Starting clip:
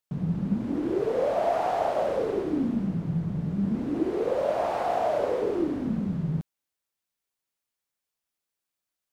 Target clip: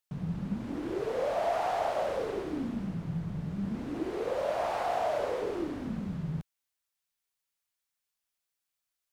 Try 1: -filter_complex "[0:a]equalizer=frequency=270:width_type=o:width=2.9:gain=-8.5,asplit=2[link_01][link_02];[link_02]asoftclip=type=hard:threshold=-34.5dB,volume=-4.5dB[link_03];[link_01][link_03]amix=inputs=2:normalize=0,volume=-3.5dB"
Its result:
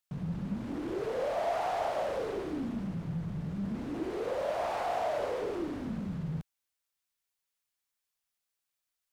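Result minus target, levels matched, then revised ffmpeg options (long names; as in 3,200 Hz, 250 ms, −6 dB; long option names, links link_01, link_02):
hard clipping: distortion +14 dB
-filter_complex "[0:a]equalizer=frequency=270:width_type=o:width=2.9:gain=-8.5,asplit=2[link_01][link_02];[link_02]asoftclip=type=hard:threshold=-25dB,volume=-4.5dB[link_03];[link_01][link_03]amix=inputs=2:normalize=0,volume=-3.5dB"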